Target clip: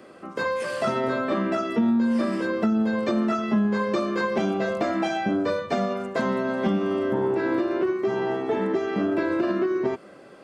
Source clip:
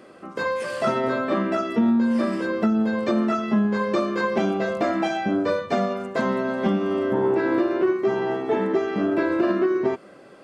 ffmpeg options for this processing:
-filter_complex "[0:a]acrossover=split=180|3000[a][b][c];[b]acompressor=threshold=-21dB:ratio=6[d];[a][d][c]amix=inputs=3:normalize=0"

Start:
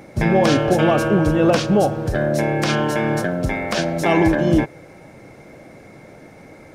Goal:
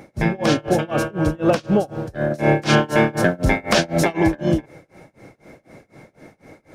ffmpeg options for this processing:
-filter_complex "[0:a]asplit=3[a][b][c];[a]afade=t=out:st=2.3:d=0.02[d];[b]acontrast=84,afade=t=in:st=2.3:d=0.02,afade=t=out:st=4.12:d=0.02[e];[c]afade=t=in:st=4.12:d=0.02[f];[d][e][f]amix=inputs=3:normalize=0,tremolo=f=4:d=0.96"

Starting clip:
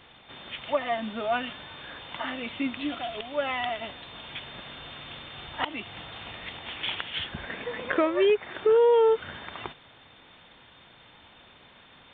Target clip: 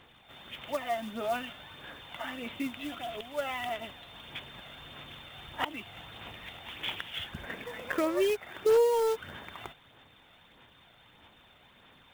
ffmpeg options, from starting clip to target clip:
-af "acrusher=bits=4:mode=log:mix=0:aa=0.000001,aphaser=in_gain=1:out_gain=1:delay=1.5:decay=0.33:speed=1.6:type=sinusoidal,volume=-6dB"

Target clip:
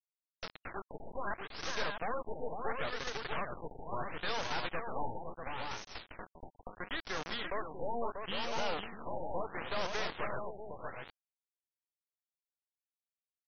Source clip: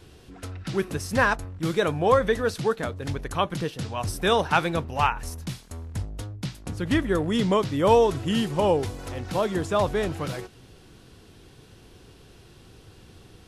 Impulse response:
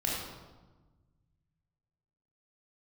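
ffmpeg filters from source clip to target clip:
-af "acompressor=threshold=-31dB:ratio=3,highpass=f=560:w=0.5412,highpass=f=560:w=1.3066,aeval=exprs='(tanh(141*val(0)+0.35)-tanh(0.35))/141':c=same,acrusher=bits=6:mix=0:aa=0.000001,aecho=1:1:502|640:0.531|0.531,afftfilt=real='re*lt(b*sr/1024,910*pow(6600/910,0.5+0.5*sin(2*PI*0.73*pts/sr)))':imag='im*lt(b*sr/1024,910*pow(6600/910,0.5+0.5*sin(2*PI*0.73*pts/sr)))':win_size=1024:overlap=0.75,volume=7dB"

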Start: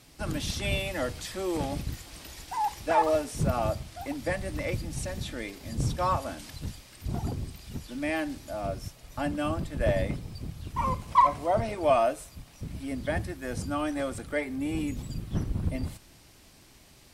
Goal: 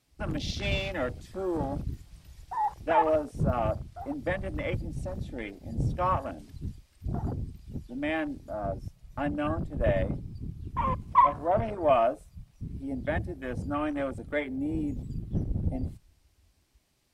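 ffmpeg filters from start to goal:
-af "afwtdn=0.0112"

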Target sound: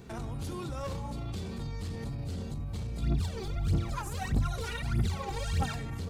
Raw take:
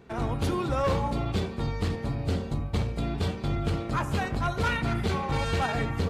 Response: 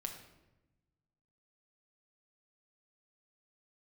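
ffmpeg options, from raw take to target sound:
-filter_complex "[0:a]bass=f=250:g=7,treble=f=4k:g=12,alimiter=level_in=6dB:limit=-24dB:level=0:latency=1:release=105,volume=-6dB,asplit=3[a][b][c];[a]afade=t=out:st=3.01:d=0.02[d];[b]aphaser=in_gain=1:out_gain=1:delay=2.7:decay=0.74:speed=1.6:type=triangular,afade=t=in:st=3.01:d=0.02,afade=t=out:st=5.75:d=0.02[e];[c]afade=t=in:st=5.75:d=0.02[f];[d][e][f]amix=inputs=3:normalize=0"

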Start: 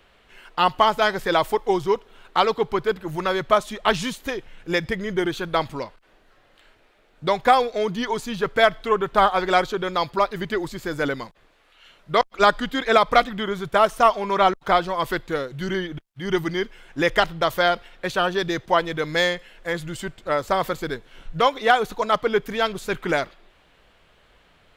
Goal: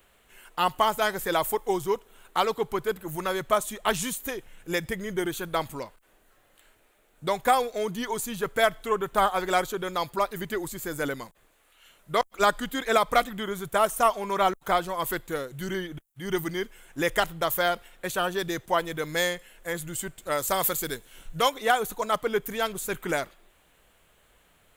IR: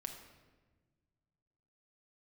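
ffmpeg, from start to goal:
-filter_complex "[0:a]aexciter=amount=6.8:drive=3.4:freq=6.9k,asplit=3[a][b][c];[a]afade=t=out:st=20.17:d=0.02[d];[b]adynamicequalizer=threshold=0.0126:dfrequency=2400:dqfactor=0.7:tfrequency=2400:tqfactor=0.7:attack=5:release=100:ratio=0.375:range=4:mode=boostabove:tftype=highshelf,afade=t=in:st=20.17:d=0.02,afade=t=out:st=21.49:d=0.02[e];[c]afade=t=in:st=21.49:d=0.02[f];[d][e][f]amix=inputs=3:normalize=0,volume=-5.5dB"

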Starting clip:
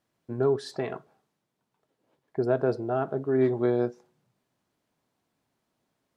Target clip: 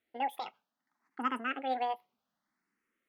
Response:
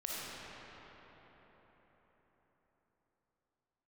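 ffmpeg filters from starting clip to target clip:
-filter_complex "[0:a]equalizer=f=100:t=o:w=0.67:g=5,equalizer=f=250:t=o:w=0.67:g=-5,equalizer=f=1k:t=o:w=0.67:g=6,equalizer=f=4k:t=o:w=0.67:g=-7,asetrate=88200,aresample=44100,asplit=2[a][b];[b]afreqshift=0.63[c];[a][c]amix=inputs=2:normalize=1,volume=-4.5dB"

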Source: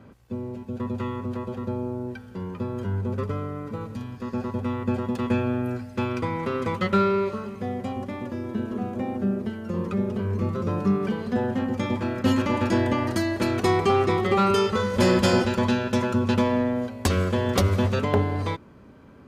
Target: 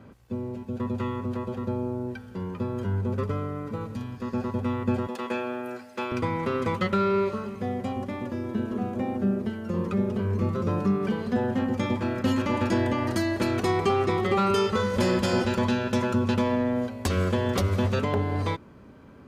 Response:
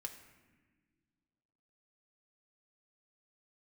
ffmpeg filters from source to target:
-filter_complex "[0:a]asettb=1/sr,asplit=3[a][b][c];[a]atrim=end=5.074[d];[b]atrim=start=5.07:end=6.12,asetpts=PTS-STARTPTS,afade=t=in:d=0.004:c=qsin,afade=t=out:st=1.046:d=0.004:c=qsin,highpass=420[e];[c]atrim=start=6.116[f];[d][e]acrossfade=d=0.004:c1=hsin:c2=qsin[g];[g][f]acrossfade=d=0.004:c1=qsin:c2=hsin,alimiter=limit=-14.5dB:level=0:latency=1:release=229"

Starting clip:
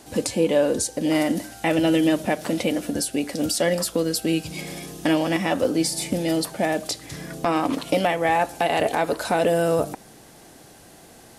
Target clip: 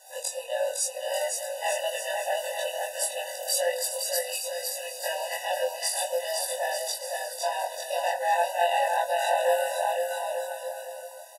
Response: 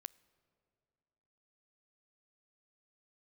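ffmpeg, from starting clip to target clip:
-filter_complex "[0:a]afftfilt=real='re':imag='-im':win_size=2048:overlap=0.75,crystalizer=i=1:c=0,asplit=2[a][b];[b]aecho=0:1:510|892.5|1179|1395|1556:0.631|0.398|0.251|0.158|0.1[c];[a][c]amix=inputs=2:normalize=0,afftfilt=real='re*eq(mod(floor(b*sr/1024/500),2),1)':imag='im*eq(mod(floor(b*sr/1024/500),2),1)':win_size=1024:overlap=0.75"

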